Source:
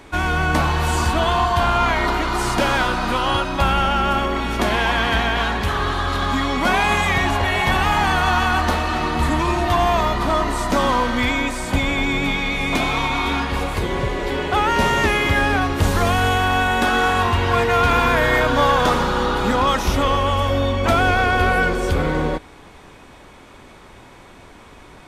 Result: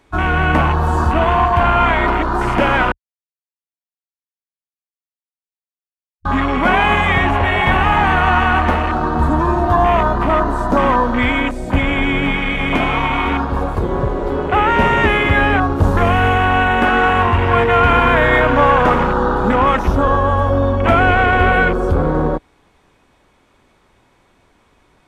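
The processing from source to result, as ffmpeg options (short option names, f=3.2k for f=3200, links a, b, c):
-filter_complex "[0:a]asplit=3[a][b][c];[a]atrim=end=2.92,asetpts=PTS-STARTPTS,afade=t=out:st=2.916:d=0.004:c=hsin[d];[b]atrim=start=2.92:end=6.25,asetpts=PTS-STARTPTS,volume=0[e];[c]atrim=start=6.25,asetpts=PTS-STARTPTS,afade=t=in:d=0.004:c=hsin[f];[d][e][f]concat=n=3:v=0:a=1,afwtdn=0.0708,volume=4.5dB"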